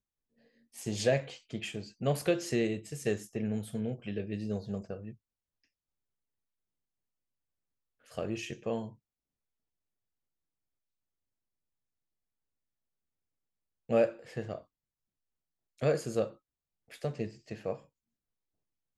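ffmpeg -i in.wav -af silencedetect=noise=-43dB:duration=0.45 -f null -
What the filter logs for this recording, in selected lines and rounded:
silence_start: 0.00
silence_end: 0.76 | silence_duration: 0.76
silence_start: 5.12
silence_end: 8.12 | silence_duration: 3.00
silence_start: 8.89
silence_end: 13.89 | silence_duration: 5.00
silence_start: 14.58
silence_end: 15.81 | silence_duration: 1.23
silence_start: 16.30
silence_end: 16.92 | silence_duration: 0.62
silence_start: 17.76
silence_end: 18.97 | silence_duration: 1.21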